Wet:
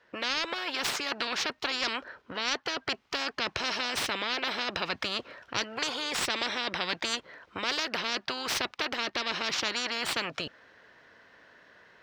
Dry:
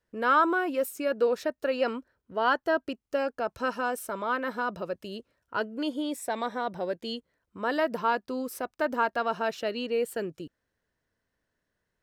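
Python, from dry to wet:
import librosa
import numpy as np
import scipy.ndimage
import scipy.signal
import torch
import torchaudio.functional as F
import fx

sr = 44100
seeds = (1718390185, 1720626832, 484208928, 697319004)

y = fx.tracing_dist(x, sr, depth_ms=0.057)
y = fx.highpass(y, sr, hz=980.0, slope=6)
y = fx.rider(y, sr, range_db=4, speed_s=0.5)
y = fx.air_absorb(y, sr, metres=230.0)
y = fx.spectral_comp(y, sr, ratio=10.0)
y = F.gain(torch.from_numpy(y), 5.0).numpy()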